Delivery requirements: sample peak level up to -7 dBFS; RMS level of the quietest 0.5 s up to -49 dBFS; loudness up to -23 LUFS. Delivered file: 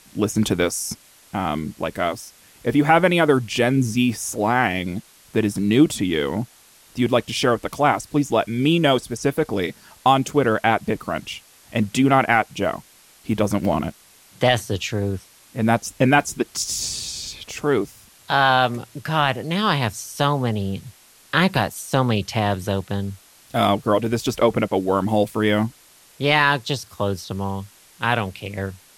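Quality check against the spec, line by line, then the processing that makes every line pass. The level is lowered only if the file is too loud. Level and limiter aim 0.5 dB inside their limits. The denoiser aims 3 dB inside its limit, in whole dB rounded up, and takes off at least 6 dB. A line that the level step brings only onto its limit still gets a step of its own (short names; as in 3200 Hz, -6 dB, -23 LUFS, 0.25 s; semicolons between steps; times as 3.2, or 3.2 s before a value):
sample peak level -3.5 dBFS: fail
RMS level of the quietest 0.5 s -51 dBFS: OK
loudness -21.5 LUFS: fail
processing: gain -2 dB; limiter -7.5 dBFS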